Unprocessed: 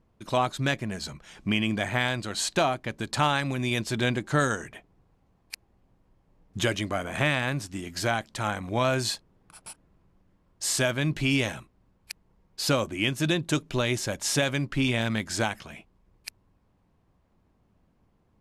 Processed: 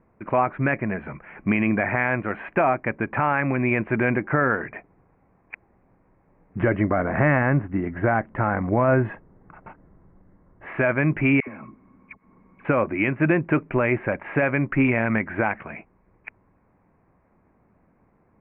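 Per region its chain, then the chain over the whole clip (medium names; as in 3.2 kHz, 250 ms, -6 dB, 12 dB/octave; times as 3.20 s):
6.60–10.66 s: tilt EQ -2 dB/octave + band-stop 2.4 kHz, Q 6.5
11.40–12.65 s: compression, threshold -47 dBFS + small resonant body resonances 240/1100/2200 Hz, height 13 dB, ringing for 30 ms + phase dispersion lows, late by 75 ms, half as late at 910 Hz
whole clip: steep low-pass 2.4 kHz 72 dB/octave; bass shelf 120 Hz -11 dB; peak limiter -18.5 dBFS; trim +9 dB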